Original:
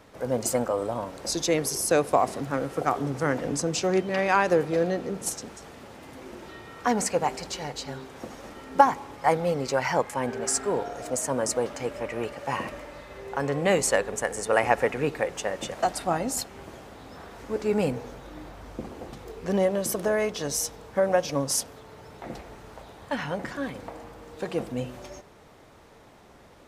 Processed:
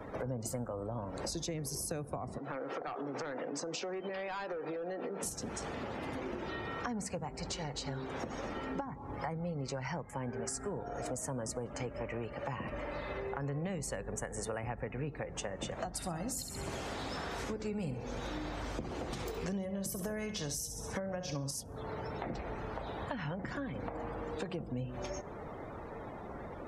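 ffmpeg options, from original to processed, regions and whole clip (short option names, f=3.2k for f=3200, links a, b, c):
-filter_complex "[0:a]asettb=1/sr,asplit=3[a][b][c];[a]atrim=end=2.384[d];[b]atrim=start=2.38:end=5.23,asetpts=PTS-STARTPTS,afade=t=in:d=0.004:c=qsin,afade=t=out:st=2.846:d=0.004:c=qsin,highpass=340,lowpass=5.1k,volume=22dB,asoftclip=hard,volume=-22dB,acompressor=threshold=-36dB:ratio=6:attack=3.2:release=140:knee=1:detection=peak[e];[c]atrim=start=5.226[f];[d][e]acrossfade=d=0.004:c1=hsin:c2=qsin[g];[g][f]acrossfade=d=0.004:c1=qsin:c2=hsin,asettb=1/sr,asplit=3[h][i][j];[h]atrim=end=15.944[k];[i]atrim=start=15.94:end=21.51,asetpts=PTS-STARTPTS,afade=t=in:d=0.004:c=qsin,afade=t=out:st=5.566:d=0.004:c=qsin,highshelf=f=2.2k:g=8.5,aecho=1:1:66|132|198|264|330:0.299|0.14|0.0659|0.031|0.0146,atrim=end_sample=245637[l];[j]atrim=start=21.506[m];[k][l]acrossfade=d=0.004:c1=hsin:c2=qsin[n];[n][m]acrossfade=d=0.004:c1=qsin:c2=hsin,acrossover=split=180[o][p];[p]acompressor=threshold=-40dB:ratio=4[q];[o][q]amix=inputs=2:normalize=0,afftdn=nr=22:nf=-57,acompressor=threshold=-46dB:ratio=4,volume=9dB"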